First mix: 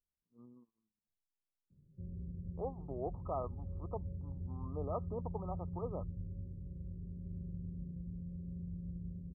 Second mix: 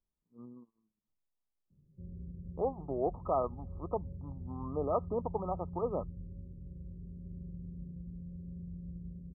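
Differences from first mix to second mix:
speech +8.0 dB
master: add parametric band 100 Hz −7 dB 0.23 octaves

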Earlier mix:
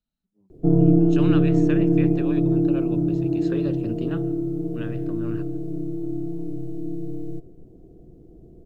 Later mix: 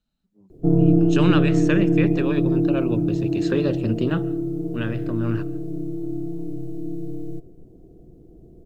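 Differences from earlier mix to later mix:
speech +8.5 dB
master: add high-shelf EQ 5,500 Hz +4 dB

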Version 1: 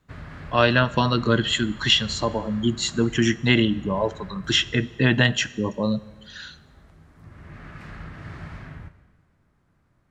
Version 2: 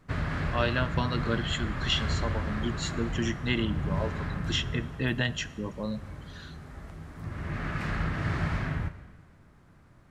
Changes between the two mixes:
speech −10.0 dB
background +8.5 dB

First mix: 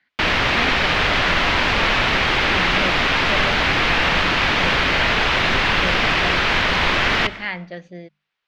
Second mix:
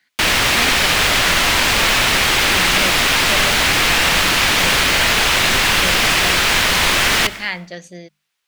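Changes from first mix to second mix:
speech: remove high-frequency loss of the air 78 metres
master: remove high-frequency loss of the air 240 metres

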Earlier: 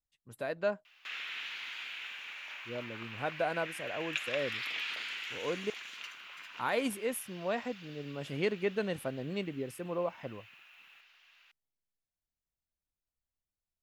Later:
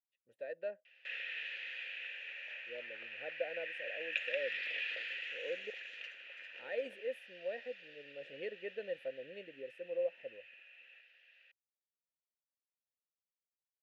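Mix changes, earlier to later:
background +9.5 dB
master: add formant filter e

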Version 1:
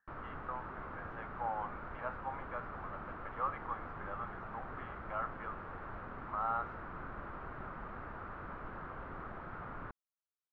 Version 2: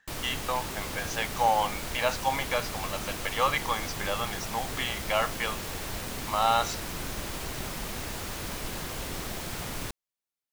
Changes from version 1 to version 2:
speech +7.0 dB
master: remove transistor ladder low-pass 1,500 Hz, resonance 60%

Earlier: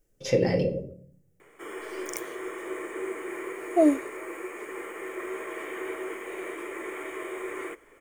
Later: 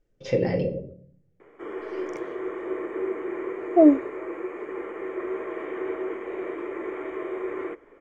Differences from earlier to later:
background: add tilt shelving filter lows +6.5 dB, about 1,500 Hz
master: add high-frequency loss of the air 160 metres

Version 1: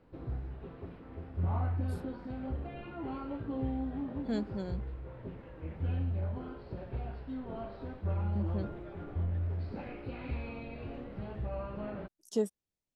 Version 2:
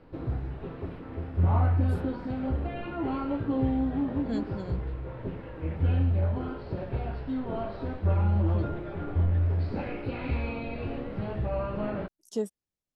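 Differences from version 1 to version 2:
background +7.5 dB
reverb: on, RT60 0.45 s

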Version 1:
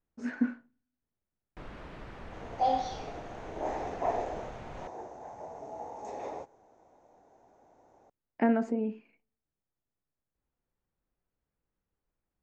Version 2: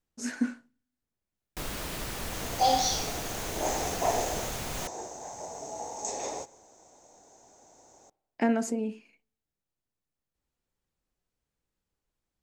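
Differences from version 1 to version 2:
first sound +7.5 dB
second sound: send on
master: remove low-pass filter 1,900 Hz 12 dB per octave

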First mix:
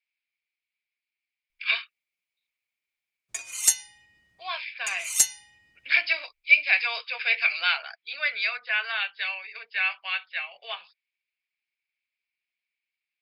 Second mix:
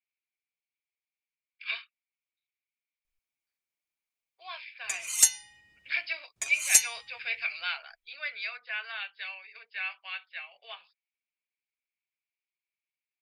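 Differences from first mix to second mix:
speech −9.0 dB
background: entry +1.55 s

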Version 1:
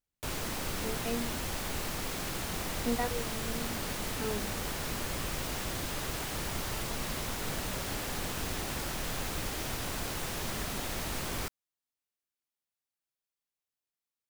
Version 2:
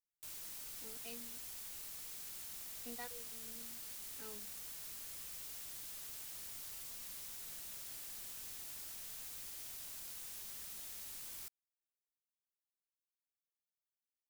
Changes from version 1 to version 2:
background −9.0 dB
master: add first-order pre-emphasis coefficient 0.9

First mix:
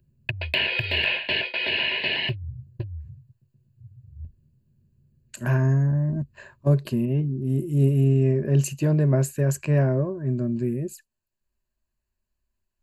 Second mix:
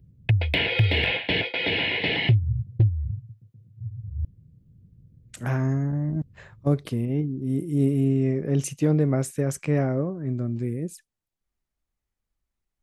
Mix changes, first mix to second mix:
background: add low-shelf EQ 460 Hz +11.5 dB
master: remove EQ curve with evenly spaced ripples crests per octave 1.4, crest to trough 11 dB

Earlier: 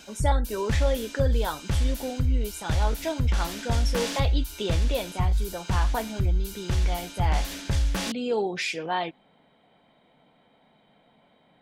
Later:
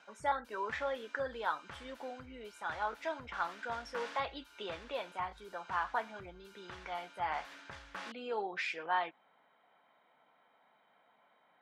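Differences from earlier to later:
background −6.0 dB
master: add resonant band-pass 1,300 Hz, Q 1.6

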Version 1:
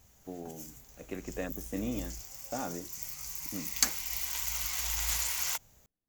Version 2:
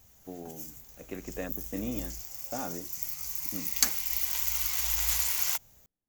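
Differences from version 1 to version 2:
background: add high-shelf EQ 6,300 Hz +7 dB
master: add parametric band 8,100 Hz −3.5 dB 0.94 octaves

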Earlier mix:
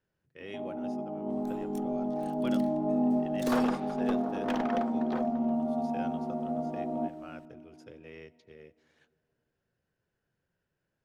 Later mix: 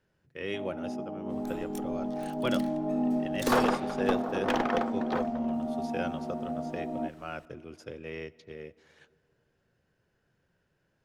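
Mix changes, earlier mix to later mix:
speech +8.5 dB
first sound: send −9.5 dB
second sound +6.5 dB

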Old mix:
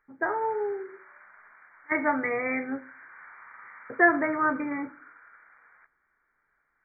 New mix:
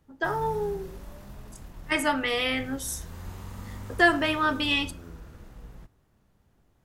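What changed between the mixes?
background: remove high-pass with resonance 1,500 Hz, resonance Q 3.2
master: remove linear-phase brick-wall low-pass 2,400 Hz

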